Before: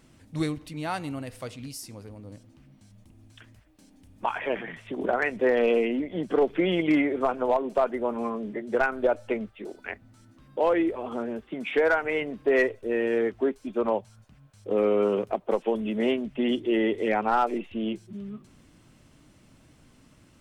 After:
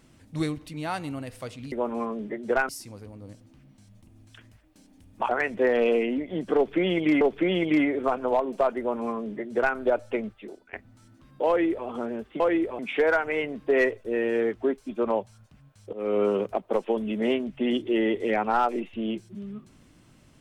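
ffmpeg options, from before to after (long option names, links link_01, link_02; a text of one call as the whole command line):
ffmpeg -i in.wav -filter_complex "[0:a]asplit=9[link_01][link_02][link_03][link_04][link_05][link_06][link_07][link_08][link_09];[link_01]atrim=end=1.722[link_10];[link_02]atrim=start=7.958:end=8.932[link_11];[link_03]atrim=start=1.718:end=4.322[link_12];[link_04]atrim=start=5.108:end=7.032[link_13];[link_05]atrim=start=6.378:end=9.9,asetpts=PTS-STARTPTS,afade=type=out:start_time=3.152:duration=0.37:silence=0.0944061[link_14];[link_06]atrim=start=9.9:end=11.572,asetpts=PTS-STARTPTS,afade=type=in:duration=0.004:curve=hsin:silence=0.0944061[link_15];[link_07]atrim=start=10.648:end=11.042[link_16];[link_08]atrim=start=11.568:end=14.71,asetpts=PTS-STARTPTS,afade=type=out:start_time=3.138:duration=0.004:curve=hsin:silence=0.0668344[link_17];[link_09]atrim=start=14.71,asetpts=PTS-STARTPTS,afade=type=in:duration=0.26:silence=0.0668344[link_18];[link_10][link_11]acrossfade=duration=0.004:curve1=hsin:curve2=hsin[link_19];[link_19][link_12]acrossfade=duration=0.004:curve1=hsin:curve2=hsin[link_20];[link_20][link_13]acrossfade=duration=0.004:curve1=hsin:curve2=hsin[link_21];[link_14][link_15]concat=n=2:v=0:a=1[link_22];[link_21][link_22]acrossfade=duration=0.004:curve1=hsin:curve2=hsin[link_23];[link_23][link_16]acrossfade=duration=0.004:curve1=hsin:curve2=hsin[link_24];[link_17][link_18]concat=n=2:v=0:a=1[link_25];[link_24][link_25]acrossfade=duration=0.004:curve1=hsin:curve2=hsin" out.wav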